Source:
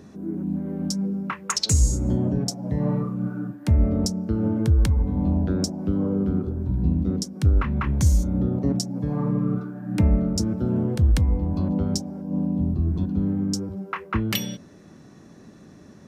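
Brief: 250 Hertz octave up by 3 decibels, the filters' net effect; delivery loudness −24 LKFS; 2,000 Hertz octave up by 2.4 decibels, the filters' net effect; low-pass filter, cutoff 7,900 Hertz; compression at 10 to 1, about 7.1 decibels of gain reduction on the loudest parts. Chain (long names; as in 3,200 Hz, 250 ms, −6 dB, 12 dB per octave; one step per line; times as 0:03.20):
low-pass filter 7,900 Hz
parametric band 250 Hz +4 dB
parametric band 2,000 Hz +3 dB
downward compressor 10 to 1, threshold −20 dBFS
level +2 dB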